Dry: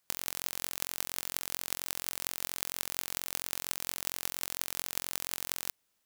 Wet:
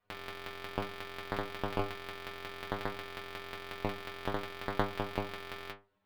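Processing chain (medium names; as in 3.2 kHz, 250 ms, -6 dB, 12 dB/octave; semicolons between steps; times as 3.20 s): in parallel at -6.5 dB: decimation with a swept rate 20×, swing 60% 0.6 Hz; on the sum: distance through air 440 m; inharmonic resonator 98 Hz, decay 0.34 s, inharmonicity 0.002; trim +14.5 dB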